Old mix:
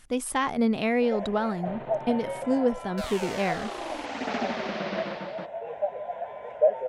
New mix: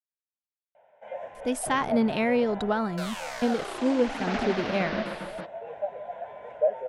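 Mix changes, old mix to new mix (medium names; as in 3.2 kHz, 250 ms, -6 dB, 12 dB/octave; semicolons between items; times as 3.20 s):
speech: entry +1.35 s; first sound -3.0 dB; master: add peaking EQ 1.5 kHz +3 dB 0.23 oct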